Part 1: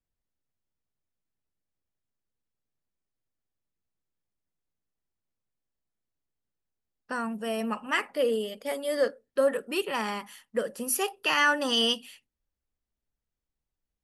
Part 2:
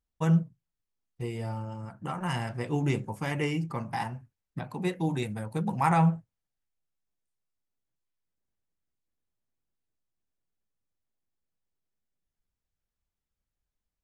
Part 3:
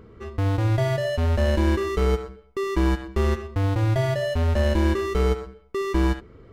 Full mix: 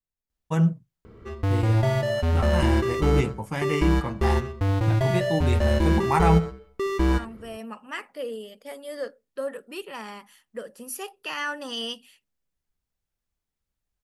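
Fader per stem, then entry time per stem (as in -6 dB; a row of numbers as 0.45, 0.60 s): -7.0, +2.5, -0.5 dB; 0.00, 0.30, 1.05 s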